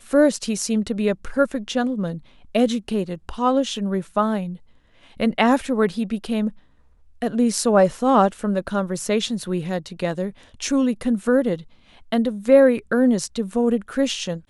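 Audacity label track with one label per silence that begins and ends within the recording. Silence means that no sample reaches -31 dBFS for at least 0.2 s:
2.180000	2.550000	silence
4.550000	5.200000	silence
6.490000	7.220000	silence
10.300000	10.600000	silence
11.600000	12.120000	silence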